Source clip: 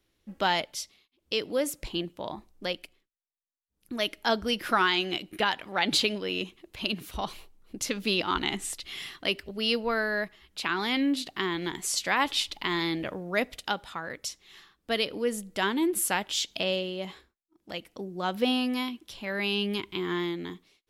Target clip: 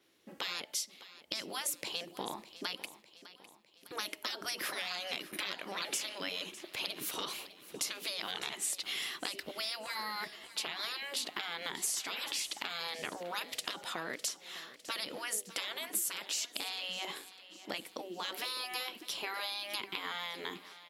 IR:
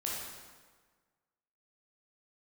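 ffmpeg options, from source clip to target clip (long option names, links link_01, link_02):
-af "afftfilt=real='re*lt(hypot(re,im),0.0708)':imag='im*lt(hypot(re,im),0.0708)':win_size=1024:overlap=0.75,highpass=240,acompressor=threshold=-40dB:ratio=12,aecho=1:1:605|1210|1815|2420|3025:0.158|0.0856|0.0462|0.025|0.0135,adynamicequalizer=threshold=0.00178:dfrequency=5300:dqfactor=0.7:tfrequency=5300:tqfactor=0.7:attack=5:release=100:ratio=0.375:range=2:mode=boostabove:tftype=highshelf,volume=5.5dB"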